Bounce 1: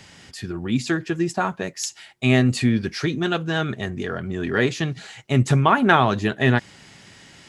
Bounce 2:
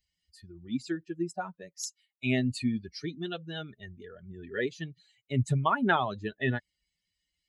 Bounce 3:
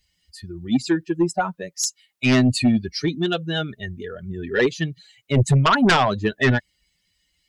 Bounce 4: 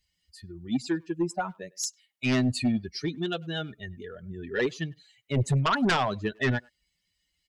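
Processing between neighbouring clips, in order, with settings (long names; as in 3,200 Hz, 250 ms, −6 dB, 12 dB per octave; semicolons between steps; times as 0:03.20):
spectral dynamics exaggerated over time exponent 2; level −6.5 dB
sine wavefolder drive 10 dB, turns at −11.5 dBFS
far-end echo of a speakerphone 100 ms, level −25 dB; level −8 dB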